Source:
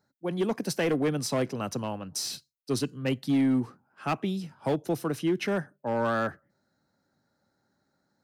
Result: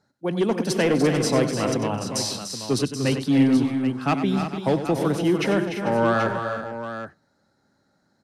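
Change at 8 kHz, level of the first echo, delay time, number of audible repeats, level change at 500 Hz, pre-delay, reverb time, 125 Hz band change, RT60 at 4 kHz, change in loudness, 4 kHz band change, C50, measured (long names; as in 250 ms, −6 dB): +6.0 dB, −11.0 dB, 95 ms, 6, +7.0 dB, no reverb audible, no reverb audible, +7.5 dB, no reverb audible, +6.5 dB, +7.0 dB, no reverb audible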